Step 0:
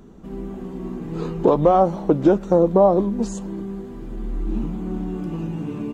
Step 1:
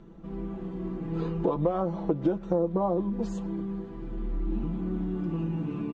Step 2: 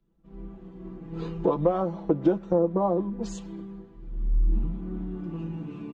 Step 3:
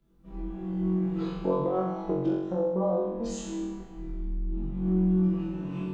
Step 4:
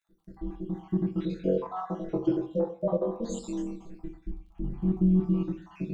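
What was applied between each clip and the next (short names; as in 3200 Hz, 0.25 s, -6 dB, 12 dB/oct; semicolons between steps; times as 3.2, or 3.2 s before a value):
LPF 3800 Hz 12 dB/oct; comb 6 ms, depth 62%; compressor 2.5:1, threshold -20 dBFS, peak gain reduction 9.5 dB; gain -5.5 dB
three-band expander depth 100%
compressor 2.5:1, threshold -38 dBFS, peak gain reduction 14.5 dB; on a send: flutter echo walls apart 3.7 m, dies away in 1 s; on the sum: gain +2.5 dB
random spectral dropouts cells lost 59%; crackle 24/s -60 dBFS; on a send at -5 dB: reverb RT60 0.40 s, pre-delay 3 ms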